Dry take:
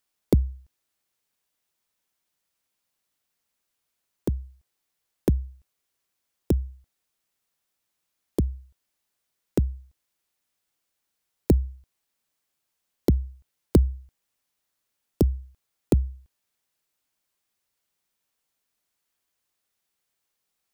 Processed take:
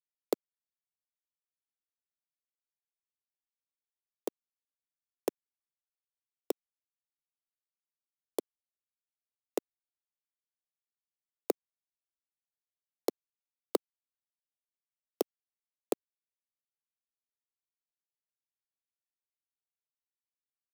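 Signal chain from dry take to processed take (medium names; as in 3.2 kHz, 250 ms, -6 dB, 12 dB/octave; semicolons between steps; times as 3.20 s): high-pass 460 Hz 24 dB/octave; band-stop 1.6 kHz, Q 5; waveshaping leveller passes 1; bit crusher 9-bit; trim -3 dB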